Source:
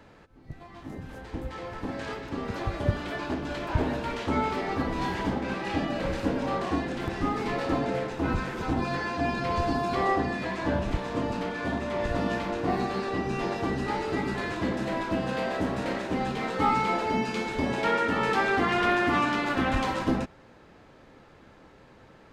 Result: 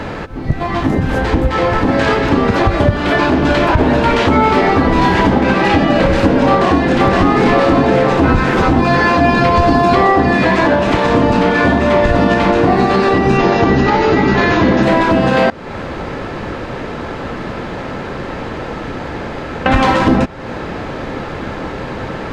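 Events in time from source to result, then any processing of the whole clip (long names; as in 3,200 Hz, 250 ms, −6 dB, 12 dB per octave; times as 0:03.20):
0:06.48–0:06.97: delay throw 520 ms, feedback 65%, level −1.5 dB
0:10.65–0:11.05: high-pass filter 310 Hz 6 dB per octave
0:13.37–0:14.83: linear-phase brick-wall low-pass 7,100 Hz
0:15.50–0:19.66: fill with room tone
whole clip: high-shelf EQ 6,800 Hz −11.5 dB; downward compressor 3 to 1, threshold −42 dBFS; boost into a limiter +31 dB; level −1 dB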